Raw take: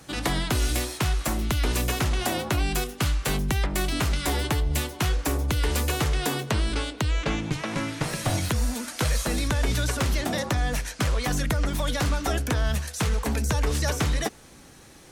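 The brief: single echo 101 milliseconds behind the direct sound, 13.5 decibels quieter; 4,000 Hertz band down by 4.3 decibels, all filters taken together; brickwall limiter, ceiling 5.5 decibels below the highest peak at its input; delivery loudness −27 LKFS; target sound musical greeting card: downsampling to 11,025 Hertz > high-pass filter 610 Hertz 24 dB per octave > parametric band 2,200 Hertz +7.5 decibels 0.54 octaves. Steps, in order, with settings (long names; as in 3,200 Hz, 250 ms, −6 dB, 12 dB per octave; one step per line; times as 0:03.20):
parametric band 4,000 Hz −7.5 dB
brickwall limiter −19.5 dBFS
single-tap delay 101 ms −13.5 dB
downsampling to 11,025 Hz
high-pass filter 610 Hz 24 dB per octave
parametric band 2,200 Hz +7.5 dB 0.54 octaves
level +6.5 dB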